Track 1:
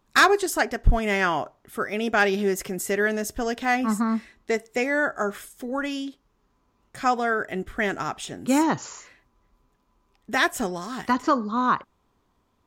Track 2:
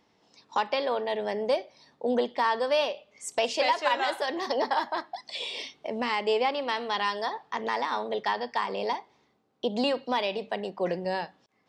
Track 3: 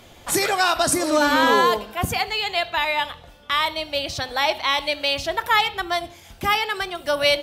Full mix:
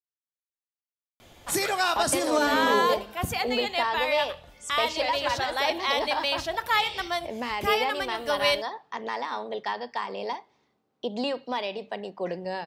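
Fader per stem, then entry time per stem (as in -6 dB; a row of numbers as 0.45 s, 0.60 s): mute, -2.5 dB, -5.5 dB; mute, 1.40 s, 1.20 s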